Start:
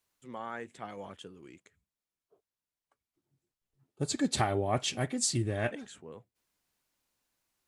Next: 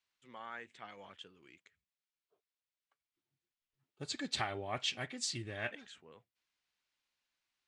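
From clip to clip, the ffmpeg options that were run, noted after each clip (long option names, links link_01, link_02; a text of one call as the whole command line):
ffmpeg -i in.wav -af "lowpass=3300,tiltshelf=frequency=1400:gain=-9.5,volume=-4dB" out.wav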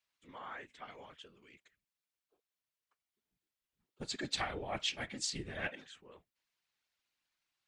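ffmpeg -i in.wav -af "afftfilt=real='hypot(re,im)*cos(2*PI*random(0))':imag='hypot(re,im)*sin(2*PI*random(1))':win_size=512:overlap=0.75,volume=6dB" out.wav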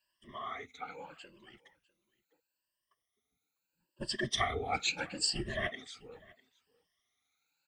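ffmpeg -i in.wav -af "afftfilt=real='re*pow(10,21/40*sin(2*PI*(1.3*log(max(b,1)*sr/1024/100)/log(2)-(0.76)*(pts-256)/sr)))':imag='im*pow(10,21/40*sin(2*PI*(1.3*log(max(b,1)*sr/1024/100)/log(2)-(0.76)*(pts-256)/sr)))':win_size=1024:overlap=0.75,aecho=1:1:650:0.0668" out.wav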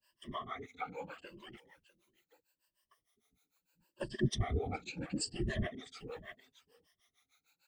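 ffmpeg -i in.wav -filter_complex "[0:a]acrossover=split=400[link_01][link_02];[link_02]acompressor=threshold=-48dB:ratio=6[link_03];[link_01][link_03]amix=inputs=2:normalize=0,acrossover=split=400[link_04][link_05];[link_04]aeval=exprs='val(0)*(1-1/2+1/2*cos(2*PI*6.6*n/s))':channel_layout=same[link_06];[link_05]aeval=exprs='val(0)*(1-1/2-1/2*cos(2*PI*6.6*n/s))':channel_layout=same[link_07];[link_06][link_07]amix=inputs=2:normalize=0,volume=10.5dB" out.wav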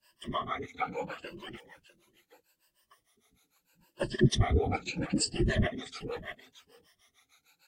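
ffmpeg -i in.wav -af "volume=8dB" -ar 44100 -c:a aac -b:a 48k out.aac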